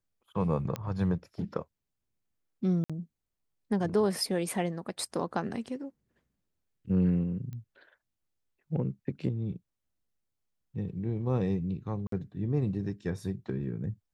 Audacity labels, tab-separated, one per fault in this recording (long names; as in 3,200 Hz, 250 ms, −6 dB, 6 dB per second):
0.760000	0.760000	click −19 dBFS
2.840000	2.900000	drop-out 56 ms
7.530000	7.530000	click −30 dBFS
12.070000	12.120000	drop-out 53 ms